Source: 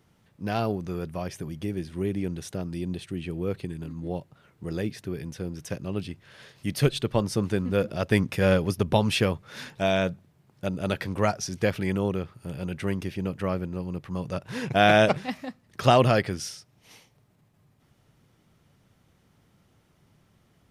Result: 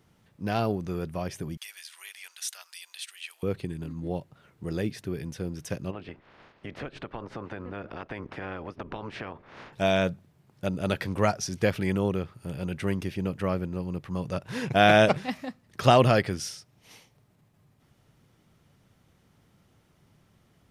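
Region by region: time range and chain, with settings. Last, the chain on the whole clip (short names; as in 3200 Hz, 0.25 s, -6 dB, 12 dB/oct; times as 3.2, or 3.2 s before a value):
1.57–3.43 Bessel high-pass 1500 Hz, order 6 + high shelf 2600 Hz +9.5 dB
5.9–9.72 spectral limiter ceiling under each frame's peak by 19 dB + LPF 1700 Hz + compressor 4:1, threshold -35 dBFS
whole clip: dry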